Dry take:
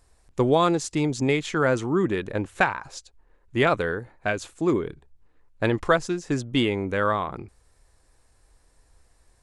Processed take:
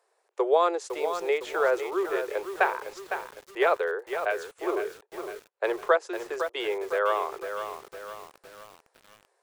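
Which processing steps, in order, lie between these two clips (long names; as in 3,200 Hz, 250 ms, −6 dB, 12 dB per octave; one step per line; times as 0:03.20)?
Butterworth high-pass 380 Hz 72 dB per octave
high-shelf EQ 2,500 Hz −11.5 dB
feedback echo at a low word length 507 ms, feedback 55%, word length 7 bits, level −8 dB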